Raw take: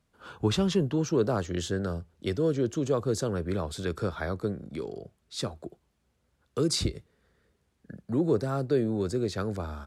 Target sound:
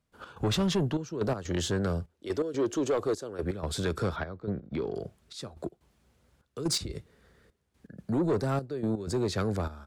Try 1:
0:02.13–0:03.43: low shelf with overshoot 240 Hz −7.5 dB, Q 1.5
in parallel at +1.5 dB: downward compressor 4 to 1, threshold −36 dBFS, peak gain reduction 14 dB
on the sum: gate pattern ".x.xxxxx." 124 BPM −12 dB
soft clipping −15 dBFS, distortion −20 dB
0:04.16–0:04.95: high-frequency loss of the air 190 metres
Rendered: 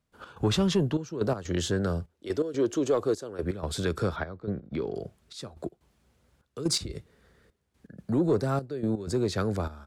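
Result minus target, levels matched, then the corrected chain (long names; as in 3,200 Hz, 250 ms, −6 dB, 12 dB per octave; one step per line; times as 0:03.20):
soft clipping: distortion −8 dB
0:02.13–0:03.43: low shelf with overshoot 240 Hz −7.5 dB, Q 1.5
in parallel at +1.5 dB: downward compressor 4 to 1, threshold −36 dBFS, peak gain reduction 14 dB
on the sum: gate pattern ".x.xxxxx." 124 BPM −12 dB
soft clipping −21.5 dBFS, distortion −12 dB
0:04.16–0:04.95: high-frequency loss of the air 190 metres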